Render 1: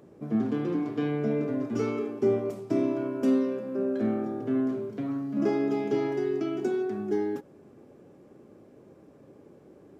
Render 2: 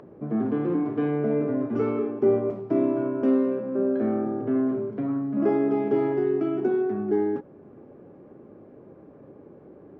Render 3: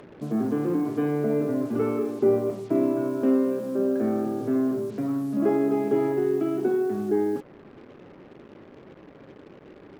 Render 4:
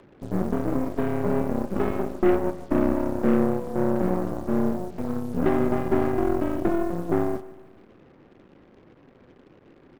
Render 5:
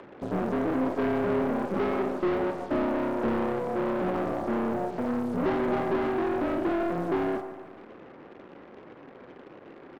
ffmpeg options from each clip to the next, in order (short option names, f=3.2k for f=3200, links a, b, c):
-filter_complex "[0:a]lowpass=1.6k,acrossover=split=260[a][b];[a]alimiter=level_in=7.5dB:limit=-24dB:level=0:latency=1,volume=-7.5dB[c];[b]acompressor=mode=upward:threshold=-51dB:ratio=2.5[d];[c][d]amix=inputs=2:normalize=0,volume=4.5dB"
-af "acrusher=bits=7:mix=0:aa=0.5"
-af "afreqshift=-34,aeval=exprs='0.282*(cos(1*acos(clip(val(0)/0.282,-1,1)))-cos(1*PI/2))+0.0398*(cos(4*acos(clip(val(0)/0.282,-1,1)))-cos(4*PI/2))+0.02*(cos(7*acos(clip(val(0)/0.282,-1,1)))-cos(7*PI/2))+0.0158*(cos(8*acos(clip(val(0)/0.282,-1,1)))-cos(8*PI/2))':c=same,aecho=1:1:153|306|459|612:0.133|0.0613|0.0282|0.013"
-filter_complex "[0:a]asplit=2[a][b];[b]highpass=f=720:p=1,volume=22dB,asoftclip=type=tanh:threshold=-9dB[c];[a][c]amix=inputs=2:normalize=0,lowpass=f=1.4k:p=1,volume=-6dB,asoftclip=type=tanh:threshold=-17dB,asplit=2[d][e];[e]adelay=46,volume=-12dB[f];[d][f]amix=inputs=2:normalize=0,volume=-4dB"